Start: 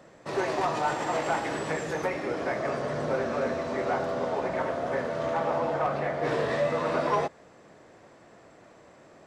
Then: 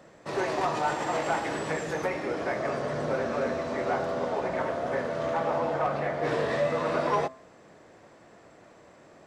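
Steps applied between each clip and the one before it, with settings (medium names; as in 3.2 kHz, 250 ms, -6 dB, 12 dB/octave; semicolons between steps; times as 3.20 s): de-hum 130.8 Hz, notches 10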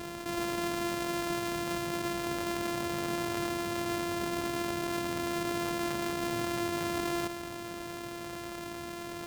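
sorted samples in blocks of 128 samples; level flattener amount 70%; trim -8.5 dB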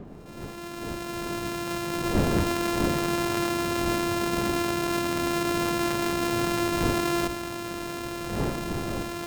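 fade-in on the opening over 2.61 s; wind noise 330 Hz -41 dBFS; pre-echo 53 ms -13 dB; trim +6.5 dB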